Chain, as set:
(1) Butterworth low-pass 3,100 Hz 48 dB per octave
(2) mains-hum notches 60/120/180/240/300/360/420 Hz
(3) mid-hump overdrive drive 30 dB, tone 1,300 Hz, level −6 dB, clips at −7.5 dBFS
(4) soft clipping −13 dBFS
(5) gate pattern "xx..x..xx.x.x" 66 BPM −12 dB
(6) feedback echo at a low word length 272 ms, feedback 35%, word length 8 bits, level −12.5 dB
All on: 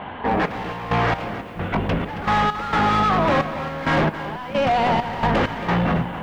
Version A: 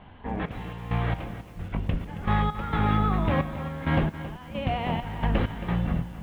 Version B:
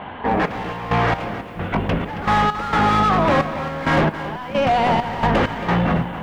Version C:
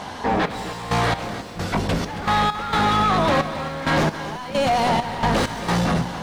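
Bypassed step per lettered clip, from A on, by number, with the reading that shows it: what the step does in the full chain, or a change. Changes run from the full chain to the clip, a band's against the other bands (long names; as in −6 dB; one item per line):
3, change in crest factor +4.5 dB
4, distortion level −20 dB
1, 4 kHz band +4.5 dB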